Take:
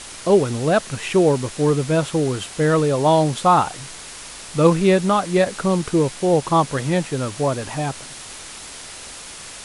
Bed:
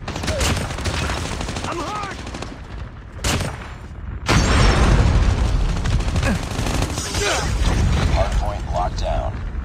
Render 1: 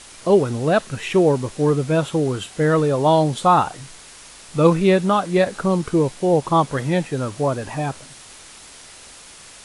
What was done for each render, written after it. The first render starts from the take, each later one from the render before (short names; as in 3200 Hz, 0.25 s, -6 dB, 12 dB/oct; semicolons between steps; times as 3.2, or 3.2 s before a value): noise print and reduce 6 dB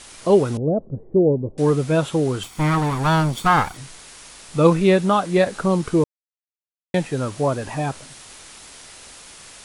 0.57–1.58 inverse Chebyshev low-pass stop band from 2500 Hz, stop band 70 dB; 2.43–3.77 minimum comb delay 0.89 ms; 6.04–6.94 mute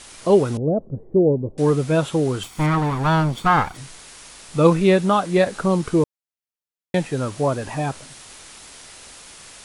2.66–3.75 high shelf 5100 Hz -9 dB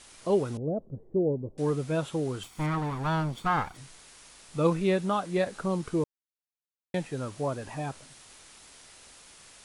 gain -10 dB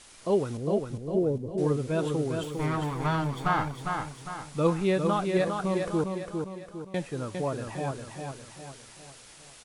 feedback echo 0.404 s, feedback 45%, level -5 dB